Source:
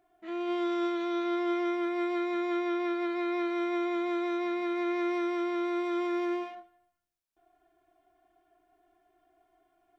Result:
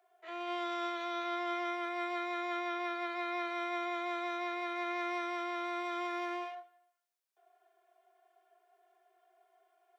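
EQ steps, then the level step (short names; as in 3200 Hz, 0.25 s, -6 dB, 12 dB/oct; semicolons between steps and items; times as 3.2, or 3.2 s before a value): steep high-pass 380 Hz 96 dB/oct; 0.0 dB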